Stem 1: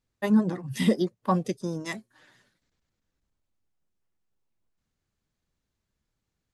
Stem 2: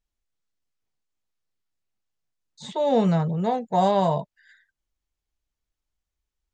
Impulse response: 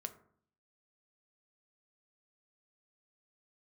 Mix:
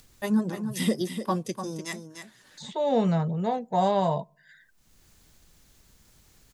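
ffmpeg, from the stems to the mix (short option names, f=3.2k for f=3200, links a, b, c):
-filter_complex "[0:a]highshelf=f=4.7k:g=11,volume=-4dB,asplit=3[a][b][c];[b]volume=-18dB[d];[c]volume=-8dB[e];[1:a]volume=-4dB,asplit=2[f][g];[g]volume=-16.5dB[h];[2:a]atrim=start_sample=2205[i];[d][h]amix=inputs=2:normalize=0[j];[j][i]afir=irnorm=-1:irlink=0[k];[e]aecho=0:1:297:1[l];[a][f][k][l]amix=inputs=4:normalize=0,acompressor=mode=upward:threshold=-39dB:ratio=2.5"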